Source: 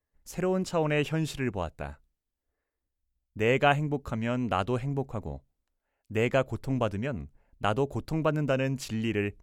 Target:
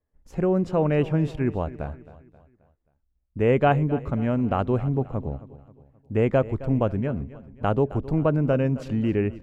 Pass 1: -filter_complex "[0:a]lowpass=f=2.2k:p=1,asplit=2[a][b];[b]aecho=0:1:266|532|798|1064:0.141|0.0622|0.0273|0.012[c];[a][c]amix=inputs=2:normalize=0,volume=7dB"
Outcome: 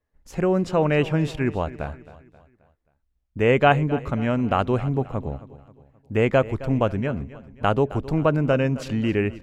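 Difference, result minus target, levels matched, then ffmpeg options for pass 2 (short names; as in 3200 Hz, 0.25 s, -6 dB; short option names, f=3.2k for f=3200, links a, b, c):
2000 Hz band +5.5 dB
-filter_complex "[0:a]lowpass=f=640:p=1,asplit=2[a][b];[b]aecho=0:1:266|532|798|1064:0.141|0.0622|0.0273|0.012[c];[a][c]amix=inputs=2:normalize=0,volume=7dB"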